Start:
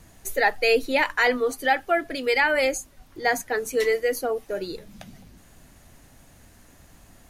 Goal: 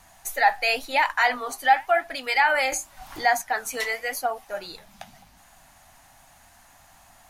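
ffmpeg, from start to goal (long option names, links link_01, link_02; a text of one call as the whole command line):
ffmpeg -i in.wav -filter_complex "[0:a]lowshelf=frequency=580:width_type=q:width=3:gain=-9.5,asplit=2[link_01][link_02];[link_02]alimiter=limit=-15.5dB:level=0:latency=1:release=33,volume=-1dB[link_03];[link_01][link_03]amix=inputs=2:normalize=0,asettb=1/sr,asplit=3[link_04][link_05][link_06];[link_04]atrim=end=2.724[link_07];[link_05]atrim=start=2.72:end=3.84,asetpts=PTS-STARTPTS,afade=type=in:duration=0.004:curve=qsin,afade=type=out:start_time=1.116:duration=0.004:curve=qsin,acompressor=mode=upward:threshold=-20dB:ratio=2.5[link_08];[link_06]atrim=start=3.836[link_09];[link_07][link_08]acrossfade=duration=0.004:curve1=hsin:curve2=qsin[link_10];[link_10][link_09]acrossfade=duration=0.004:curve1=qsin:curve2=hsin,flanger=delay=3.8:depth=7.9:regen=-74:speed=0.92:shape=sinusoidal" out.wav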